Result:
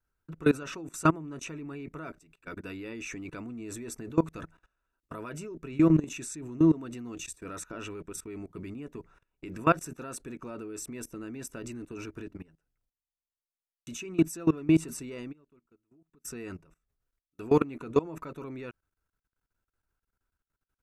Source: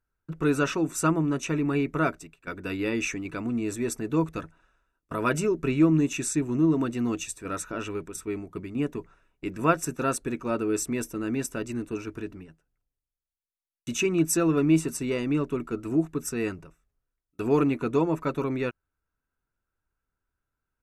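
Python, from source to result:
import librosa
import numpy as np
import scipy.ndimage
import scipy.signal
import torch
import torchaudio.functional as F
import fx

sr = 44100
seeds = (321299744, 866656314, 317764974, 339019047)

y = fx.gate_flip(x, sr, shuts_db=-33.0, range_db=-32, at=(15.31, 16.24), fade=0.02)
y = fx.level_steps(y, sr, step_db=21)
y = F.gain(torch.from_numpy(y), 2.5).numpy()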